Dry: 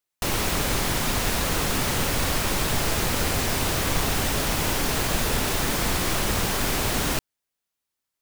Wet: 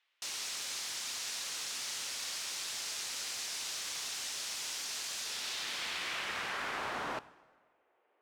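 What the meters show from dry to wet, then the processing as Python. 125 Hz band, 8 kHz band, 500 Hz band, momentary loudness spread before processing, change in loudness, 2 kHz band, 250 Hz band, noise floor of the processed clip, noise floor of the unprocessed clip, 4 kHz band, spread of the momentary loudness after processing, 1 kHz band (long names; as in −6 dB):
−34.0 dB, −10.0 dB, −20.5 dB, 0 LU, −12.5 dB, −12.0 dB, −26.5 dB, −75 dBFS, −84 dBFS, −9.0 dB, 1 LU, −15.0 dB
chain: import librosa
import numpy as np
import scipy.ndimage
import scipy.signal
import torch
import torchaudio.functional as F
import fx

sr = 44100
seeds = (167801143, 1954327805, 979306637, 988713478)

y = fx.high_shelf(x, sr, hz=9300.0, db=-6.5)
y = fx.dmg_noise_band(y, sr, seeds[0], low_hz=300.0, high_hz=2900.0, level_db=-64.0)
y = fx.filter_sweep_bandpass(y, sr, from_hz=5900.0, to_hz=540.0, start_s=5.18, end_s=7.78, q=1.1)
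y = fx.rev_plate(y, sr, seeds[1], rt60_s=1.4, hf_ratio=0.75, predelay_ms=0, drr_db=16.5)
y = y * librosa.db_to_amplitude(-5.0)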